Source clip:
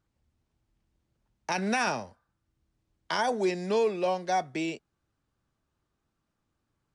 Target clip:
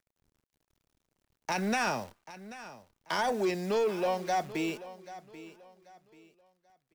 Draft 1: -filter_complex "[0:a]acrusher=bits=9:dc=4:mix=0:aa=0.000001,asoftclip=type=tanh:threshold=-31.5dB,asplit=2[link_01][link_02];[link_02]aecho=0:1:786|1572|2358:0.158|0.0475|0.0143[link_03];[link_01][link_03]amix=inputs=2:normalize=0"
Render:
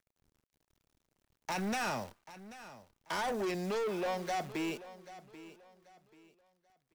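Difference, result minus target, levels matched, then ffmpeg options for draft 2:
soft clipping: distortion +9 dB
-filter_complex "[0:a]acrusher=bits=9:dc=4:mix=0:aa=0.000001,asoftclip=type=tanh:threshold=-22dB,asplit=2[link_01][link_02];[link_02]aecho=0:1:786|1572|2358:0.158|0.0475|0.0143[link_03];[link_01][link_03]amix=inputs=2:normalize=0"

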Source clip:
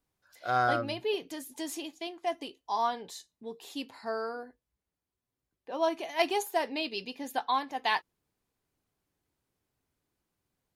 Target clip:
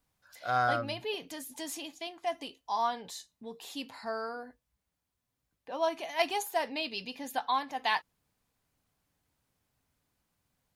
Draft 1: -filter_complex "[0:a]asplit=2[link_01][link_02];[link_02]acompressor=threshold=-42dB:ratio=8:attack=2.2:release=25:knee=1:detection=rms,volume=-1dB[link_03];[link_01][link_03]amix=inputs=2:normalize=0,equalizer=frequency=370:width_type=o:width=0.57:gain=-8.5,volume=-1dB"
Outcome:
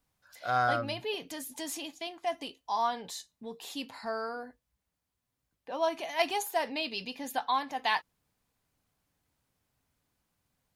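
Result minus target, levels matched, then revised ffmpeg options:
downward compressor: peak gain reduction −7.5 dB
-filter_complex "[0:a]asplit=2[link_01][link_02];[link_02]acompressor=threshold=-50.5dB:ratio=8:attack=2.2:release=25:knee=1:detection=rms,volume=-1dB[link_03];[link_01][link_03]amix=inputs=2:normalize=0,equalizer=frequency=370:width_type=o:width=0.57:gain=-8.5,volume=-1dB"

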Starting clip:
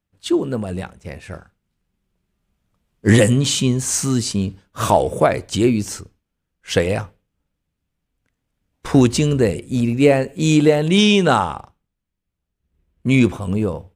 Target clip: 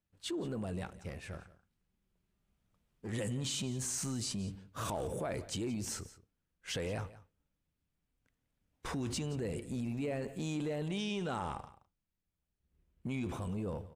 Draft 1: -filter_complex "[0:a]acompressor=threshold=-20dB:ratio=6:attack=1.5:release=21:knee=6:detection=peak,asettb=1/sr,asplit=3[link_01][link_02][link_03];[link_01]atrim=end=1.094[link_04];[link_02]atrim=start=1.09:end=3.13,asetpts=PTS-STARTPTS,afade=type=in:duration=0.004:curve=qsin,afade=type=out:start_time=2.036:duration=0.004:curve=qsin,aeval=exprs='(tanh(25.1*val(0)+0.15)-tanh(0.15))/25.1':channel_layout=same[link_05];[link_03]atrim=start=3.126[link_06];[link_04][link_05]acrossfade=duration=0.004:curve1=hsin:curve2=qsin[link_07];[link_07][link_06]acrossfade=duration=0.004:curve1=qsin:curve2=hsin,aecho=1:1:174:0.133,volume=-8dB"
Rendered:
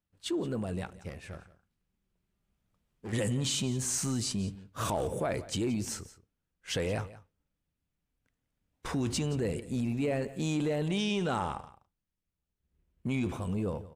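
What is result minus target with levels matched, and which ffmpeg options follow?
downward compressor: peak gain reduction −6.5 dB
-filter_complex "[0:a]acompressor=threshold=-27.5dB:ratio=6:attack=1.5:release=21:knee=6:detection=peak,asettb=1/sr,asplit=3[link_01][link_02][link_03];[link_01]atrim=end=1.094[link_04];[link_02]atrim=start=1.09:end=3.13,asetpts=PTS-STARTPTS,afade=type=in:duration=0.004:curve=qsin,afade=type=out:start_time=2.036:duration=0.004:curve=qsin,aeval=exprs='(tanh(25.1*val(0)+0.15)-tanh(0.15))/25.1':channel_layout=same[link_05];[link_03]atrim=start=3.126[link_06];[link_04][link_05]acrossfade=duration=0.004:curve1=hsin:curve2=qsin[link_07];[link_07][link_06]acrossfade=duration=0.004:curve1=qsin:curve2=hsin,aecho=1:1:174:0.133,volume=-8dB"

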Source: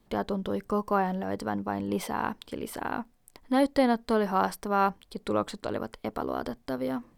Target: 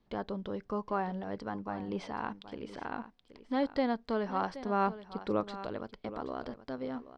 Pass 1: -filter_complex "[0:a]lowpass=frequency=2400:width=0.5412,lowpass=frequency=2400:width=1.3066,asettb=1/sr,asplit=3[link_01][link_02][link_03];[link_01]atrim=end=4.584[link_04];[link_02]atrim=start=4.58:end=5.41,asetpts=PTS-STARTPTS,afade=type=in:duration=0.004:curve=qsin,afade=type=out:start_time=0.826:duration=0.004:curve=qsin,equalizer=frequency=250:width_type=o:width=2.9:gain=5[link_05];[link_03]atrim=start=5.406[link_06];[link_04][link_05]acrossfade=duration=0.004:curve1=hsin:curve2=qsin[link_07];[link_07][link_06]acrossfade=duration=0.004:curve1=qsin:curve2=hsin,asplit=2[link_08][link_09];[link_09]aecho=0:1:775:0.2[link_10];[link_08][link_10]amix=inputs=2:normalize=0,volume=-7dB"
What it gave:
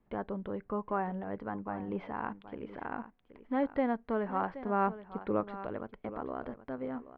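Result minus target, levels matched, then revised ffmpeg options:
4,000 Hz band −12.0 dB
-filter_complex "[0:a]lowpass=frequency=5400:width=0.5412,lowpass=frequency=5400:width=1.3066,asettb=1/sr,asplit=3[link_01][link_02][link_03];[link_01]atrim=end=4.584[link_04];[link_02]atrim=start=4.58:end=5.41,asetpts=PTS-STARTPTS,afade=type=in:duration=0.004:curve=qsin,afade=type=out:start_time=0.826:duration=0.004:curve=qsin,equalizer=frequency=250:width_type=o:width=2.9:gain=5[link_05];[link_03]atrim=start=5.406[link_06];[link_04][link_05]acrossfade=duration=0.004:curve1=hsin:curve2=qsin[link_07];[link_07][link_06]acrossfade=duration=0.004:curve1=qsin:curve2=hsin,asplit=2[link_08][link_09];[link_09]aecho=0:1:775:0.2[link_10];[link_08][link_10]amix=inputs=2:normalize=0,volume=-7dB"

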